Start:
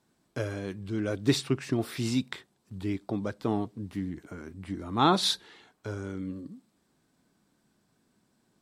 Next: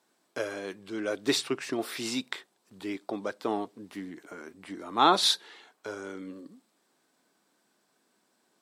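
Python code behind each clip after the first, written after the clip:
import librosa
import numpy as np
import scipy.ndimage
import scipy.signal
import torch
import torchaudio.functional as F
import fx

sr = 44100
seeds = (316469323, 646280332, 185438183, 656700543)

y = scipy.signal.sosfilt(scipy.signal.butter(2, 400.0, 'highpass', fs=sr, output='sos'), x)
y = y * 10.0 ** (3.0 / 20.0)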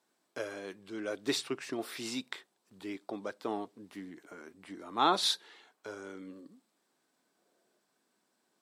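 y = fx.spec_box(x, sr, start_s=7.38, length_s=0.4, low_hz=330.0, high_hz=740.0, gain_db=8)
y = y * 10.0 ** (-5.5 / 20.0)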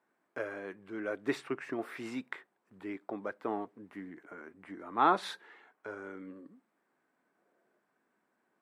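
y = fx.high_shelf_res(x, sr, hz=2800.0, db=-13.0, q=1.5)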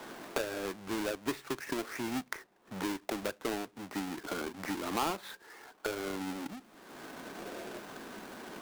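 y = fx.halfwave_hold(x, sr)
y = fx.band_squash(y, sr, depth_pct=100)
y = y * 10.0 ** (-2.5 / 20.0)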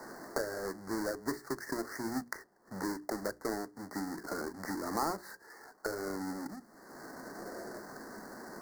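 y = scipy.signal.sosfilt(scipy.signal.ellip(3, 1.0, 40, [1900.0, 4500.0], 'bandstop', fs=sr, output='sos'), x)
y = fx.hum_notches(y, sr, base_hz=60, count=7)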